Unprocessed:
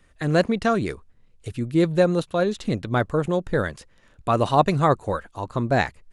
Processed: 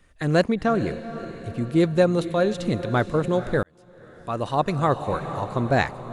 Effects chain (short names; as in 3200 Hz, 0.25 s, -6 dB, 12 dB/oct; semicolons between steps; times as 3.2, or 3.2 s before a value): 0.54–1.58 high shelf 2500 Hz -10.5 dB; diffused feedback echo 0.479 s, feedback 54%, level -12.5 dB; 3.63–5.29 fade in